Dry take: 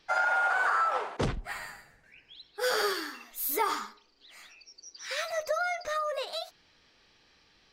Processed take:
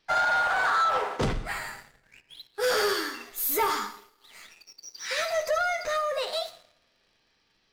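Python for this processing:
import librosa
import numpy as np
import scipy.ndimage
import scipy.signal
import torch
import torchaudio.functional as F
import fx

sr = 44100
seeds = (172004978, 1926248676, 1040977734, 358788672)

y = fx.rev_double_slope(x, sr, seeds[0], early_s=0.58, late_s=1.9, knee_db=-18, drr_db=7.0)
y = fx.leveller(y, sr, passes=2)
y = y * librosa.db_to_amplitude(-3.0)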